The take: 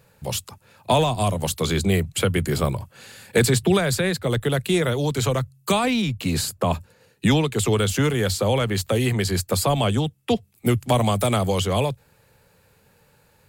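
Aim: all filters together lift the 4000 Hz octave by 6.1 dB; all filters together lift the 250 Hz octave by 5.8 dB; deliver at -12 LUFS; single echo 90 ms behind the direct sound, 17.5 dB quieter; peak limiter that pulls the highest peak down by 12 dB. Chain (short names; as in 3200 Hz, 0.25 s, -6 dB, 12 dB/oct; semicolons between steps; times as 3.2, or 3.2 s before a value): bell 250 Hz +7.5 dB; bell 4000 Hz +7.5 dB; limiter -13.5 dBFS; echo 90 ms -17.5 dB; gain +11 dB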